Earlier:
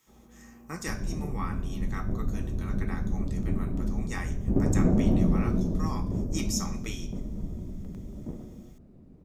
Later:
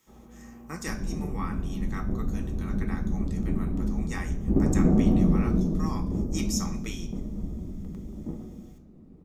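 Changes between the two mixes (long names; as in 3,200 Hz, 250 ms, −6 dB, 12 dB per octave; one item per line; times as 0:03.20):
first sound +5.0 dB
second sound: send on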